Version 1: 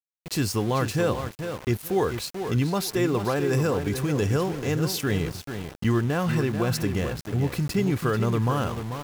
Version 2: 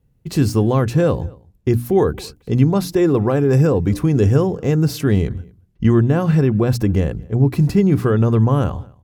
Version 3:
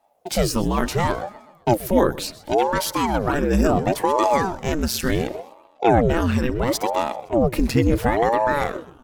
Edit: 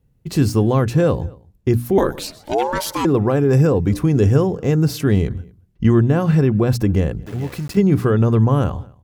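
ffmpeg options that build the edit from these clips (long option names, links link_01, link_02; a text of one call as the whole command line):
ffmpeg -i take0.wav -i take1.wav -i take2.wav -filter_complex "[1:a]asplit=3[link_01][link_02][link_03];[link_01]atrim=end=1.982[link_04];[2:a]atrim=start=1.978:end=3.052[link_05];[link_02]atrim=start=3.048:end=7.262[link_06];[0:a]atrim=start=7.258:end=7.772[link_07];[link_03]atrim=start=7.768[link_08];[link_04][link_05]acrossfade=duration=0.004:curve1=hsin:curve2=hsin[link_09];[link_09][link_06]acrossfade=duration=0.004:curve1=hsin:curve2=hsin[link_10];[link_10][link_07]acrossfade=duration=0.004:curve1=hsin:curve2=hsin[link_11];[link_11][link_08]acrossfade=duration=0.004:curve1=hsin:curve2=hsin" out.wav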